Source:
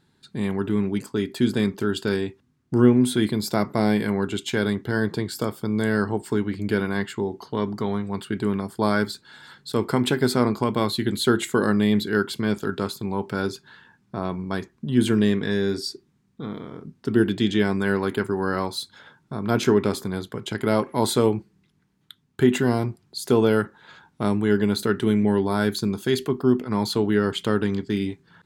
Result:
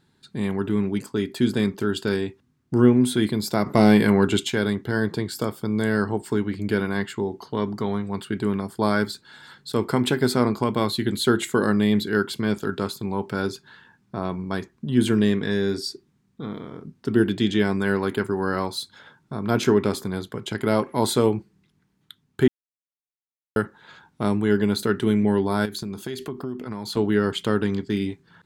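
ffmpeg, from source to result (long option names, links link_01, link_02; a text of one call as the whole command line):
ffmpeg -i in.wav -filter_complex "[0:a]asettb=1/sr,asplit=3[link_01][link_02][link_03];[link_01]atrim=end=3.664[link_04];[link_02]atrim=start=3.66:end=4.48,asetpts=PTS-STARTPTS,afade=type=in:duration=0.004:curve=qsin,afade=type=out:start_time=0.816:duration=0.004:curve=qsin,acontrast=65[link_05];[link_03]atrim=start=4.476[link_06];[link_04][link_05]acrossfade=duration=0.004:curve1=hsin:curve2=qsin[link_07];[link_07][link_06]acrossfade=duration=0.004:curve1=qsin:curve2=hsin,asettb=1/sr,asplit=3[link_08][link_09][link_10];[link_08]atrim=end=25.654[link_11];[link_09]atrim=start=25.65:end=26.97,asetpts=PTS-STARTPTS,afade=type=in:duration=0.004:curve=qsin,afade=type=out:start_time=1.316:duration=0.004:curve=qsin,acompressor=threshold=-27dB:ratio=6:attack=3.2:release=140:knee=1:detection=peak[link_12];[link_10]atrim=start=26.966[link_13];[link_11][link_12]acrossfade=duration=0.004:curve1=hsin:curve2=qsin[link_14];[link_14][link_13]acrossfade=duration=0.004:curve1=qsin:curve2=hsin,asplit=3[link_15][link_16][link_17];[link_15]atrim=end=22.48,asetpts=PTS-STARTPTS,afade=type=out:start_time=22.476:duration=0.004:curve=hsin[link_18];[link_16]atrim=start=22.48:end=23.56,asetpts=PTS-STARTPTS,volume=0[link_19];[link_17]atrim=start=23.56,asetpts=PTS-STARTPTS,afade=type=in:duration=0.004:curve=hsin[link_20];[link_18][link_19][link_20]concat=n=3:v=0:a=1" out.wav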